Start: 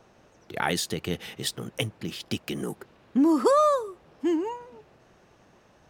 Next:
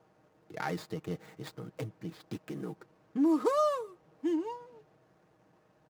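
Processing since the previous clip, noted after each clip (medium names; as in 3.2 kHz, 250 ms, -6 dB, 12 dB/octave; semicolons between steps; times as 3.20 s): median filter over 15 samples; high-pass 74 Hz; comb 6.4 ms, depth 52%; trim -8 dB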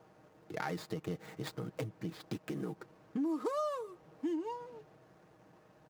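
compression 3:1, threshold -40 dBFS, peak gain reduction 13 dB; trim +4 dB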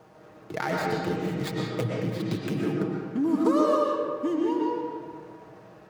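reverberation RT60 1.8 s, pre-delay 80 ms, DRR -3 dB; trim +7.5 dB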